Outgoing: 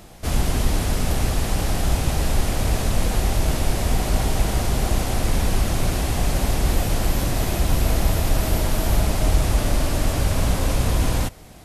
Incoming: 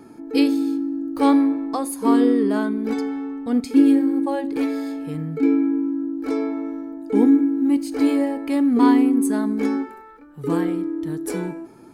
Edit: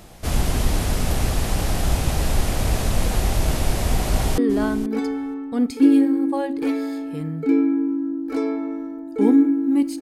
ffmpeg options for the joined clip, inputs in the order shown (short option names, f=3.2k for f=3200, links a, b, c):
-filter_complex "[0:a]apad=whole_dur=10.01,atrim=end=10.01,atrim=end=4.382[a];[1:a]atrim=start=2.318:end=7.95[b];[a][b]acrossfade=d=0.004:c1=hsin:c2=hsin,asplit=2[c][d];[d]afade=t=in:st=4.01:d=0.01,afade=t=out:st=4.38:d=0.01,aecho=0:1:480|960:0.199526|0.0199526[e];[c][e]amix=inputs=2:normalize=0"